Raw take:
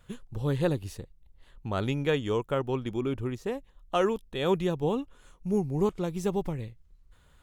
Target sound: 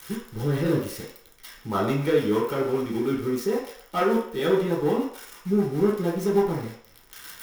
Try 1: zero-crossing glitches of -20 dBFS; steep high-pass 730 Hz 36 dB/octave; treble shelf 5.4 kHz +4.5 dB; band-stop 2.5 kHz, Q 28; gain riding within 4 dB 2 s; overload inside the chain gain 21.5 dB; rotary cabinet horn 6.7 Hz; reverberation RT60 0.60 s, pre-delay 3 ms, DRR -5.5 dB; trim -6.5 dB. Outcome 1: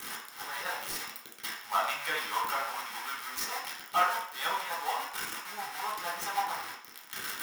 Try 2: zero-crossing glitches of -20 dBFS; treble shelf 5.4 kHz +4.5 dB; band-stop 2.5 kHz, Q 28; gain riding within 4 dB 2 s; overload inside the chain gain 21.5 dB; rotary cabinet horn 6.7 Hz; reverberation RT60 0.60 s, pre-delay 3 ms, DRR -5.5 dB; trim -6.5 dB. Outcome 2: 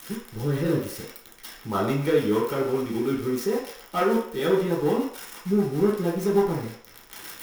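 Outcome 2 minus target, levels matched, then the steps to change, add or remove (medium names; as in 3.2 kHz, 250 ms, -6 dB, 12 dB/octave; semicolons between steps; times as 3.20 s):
zero-crossing glitches: distortion +7 dB
change: zero-crossing glitches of -27.5 dBFS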